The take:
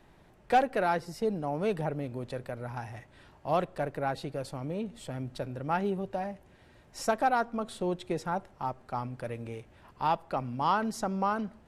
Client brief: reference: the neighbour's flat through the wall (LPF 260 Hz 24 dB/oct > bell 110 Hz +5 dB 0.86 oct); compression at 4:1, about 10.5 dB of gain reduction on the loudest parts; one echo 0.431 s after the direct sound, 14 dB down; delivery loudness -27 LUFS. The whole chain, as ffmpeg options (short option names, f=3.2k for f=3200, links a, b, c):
-af "acompressor=threshold=-32dB:ratio=4,lowpass=f=260:w=0.5412,lowpass=f=260:w=1.3066,equalizer=f=110:t=o:w=0.86:g=5,aecho=1:1:431:0.2,volume=15dB"